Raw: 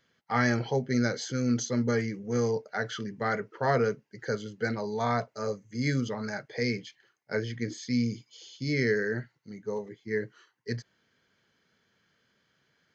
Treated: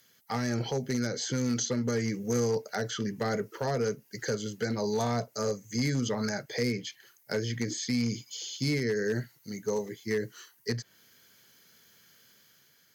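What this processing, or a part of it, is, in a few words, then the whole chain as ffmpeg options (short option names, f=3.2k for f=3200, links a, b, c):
FM broadcast chain: -filter_complex "[0:a]highpass=45,dynaudnorm=f=160:g=7:m=3.5dB,acrossover=split=660|3500[a][b][c];[a]acompressor=threshold=-25dB:ratio=4[d];[b]acompressor=threshold=-40dB:ratio=4[e];[c]acompressor=threshold=-54dB:ratio=4[f];[d][e][f]amix=inputs=3:normalize=0,aemphasis=mode=production:type=50fm,alimiter=limit=-21dB:level=0:latency=1:release=196,asoftclip=type=hard:threshold=-23.5dB,lowpass=f=15k:w=0.5412,lowpass=f=15k:w=1.3066,aemphasis=mode=production:type=50fm,volume=1.5dB"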